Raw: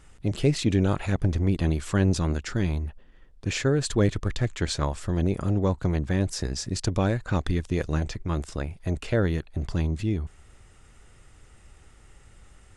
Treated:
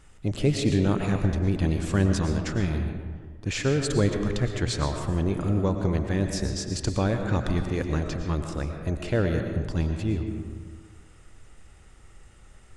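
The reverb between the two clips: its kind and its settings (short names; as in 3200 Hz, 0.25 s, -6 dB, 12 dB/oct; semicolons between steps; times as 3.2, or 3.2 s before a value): digital reverb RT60 1.6 s, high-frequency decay 0.45×, pre-delay 75 ms, DRR 4.5 dB; gain -1 dB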